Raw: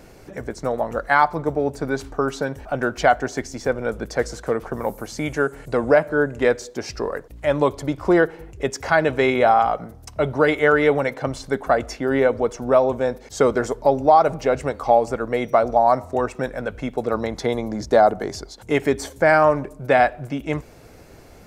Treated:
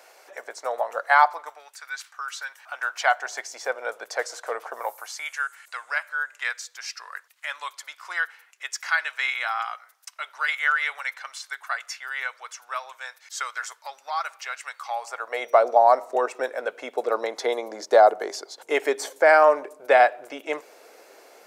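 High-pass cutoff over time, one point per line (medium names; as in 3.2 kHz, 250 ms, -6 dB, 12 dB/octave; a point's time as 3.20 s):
high-pass 24 dB/octave
1.25 s 610 Hz
1.68 s 1.4 kHz
2.33 s 1.4 kHz
3.55 s 610 Hz
4.79 s 610 Hz
5.36 s 1.3 kHz
14.82 s 1.3 kHz
15.62 s 420 Hz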